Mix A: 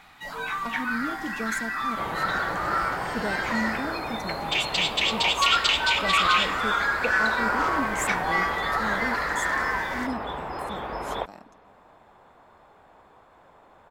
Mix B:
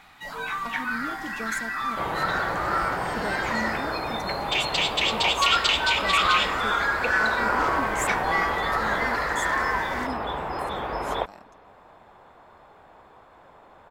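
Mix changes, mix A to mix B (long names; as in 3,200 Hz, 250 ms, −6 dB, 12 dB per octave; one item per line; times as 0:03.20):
speech: add low-shelf EQ 420 Hz −5.5 dB
second sound +3.0 dB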